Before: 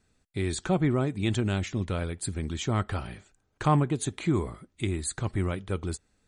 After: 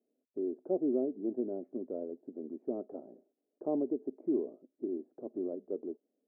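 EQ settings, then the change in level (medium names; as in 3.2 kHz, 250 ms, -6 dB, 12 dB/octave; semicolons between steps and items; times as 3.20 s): elliptic band-pass 250–640 Hz, stop band 70 dB; dynamic bell 400 Hz, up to +3 dB, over -40 dBFS, Q 3.1; -3.5 dB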